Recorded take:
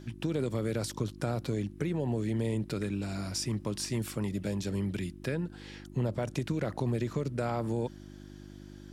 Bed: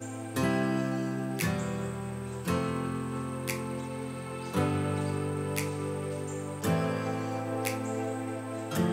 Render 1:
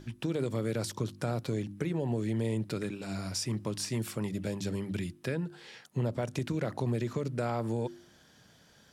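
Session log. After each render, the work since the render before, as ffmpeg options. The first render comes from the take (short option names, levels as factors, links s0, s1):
-af "bandreject=f=50:t=h:w=4,bandreject=f=100:t=h:w=4,bandreject=f=150:t=h:w=4,bandreject=f=200:t=h:w=4,bandreject=f=250:t=h:w=4,bandreject=f=300:t=h:w=4,bandreject=f=350:t=h:w=4"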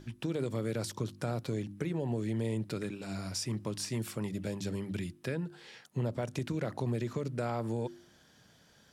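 -af "volume=0.794"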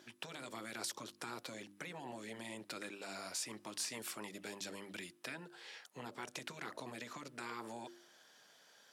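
-af "highpass=520,afftfilt=real='re*lt(hypot(re,im),0.0398)':imag='im*lt(hypot(re,im),0.0398)':win_size=1024:overlap=0.75"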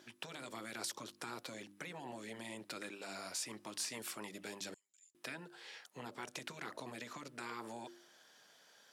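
-filter_complex "[0:a]asettb=1/sr,asplit=3[s0][s1][s2];[s0]atrim=end=4.744[s3];[s1]atrim=start=4.74:end=5.15,asetpts=PTS-STARTPTS,afade=t=in:d=0.004:c=qsin,afade=t=out:st=0.406:d=0.004:c=qsin,bandpass=f=7100:t=q:w=17[s4];[s2]atrim=start=5.146[s5];[s3][s4]acrossfade=d=0.004:c1=hsin:c2=qsin[s6];[s6][s5]acrossfade=d=0.004:c1=qsin:c2=hsin"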